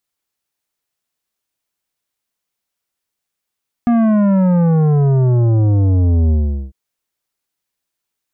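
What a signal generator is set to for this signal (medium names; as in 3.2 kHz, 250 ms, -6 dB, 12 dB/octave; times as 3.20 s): sub drop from 240 Hz, over 2.85 s, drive 11 dB, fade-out 0.41 s, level -11 dB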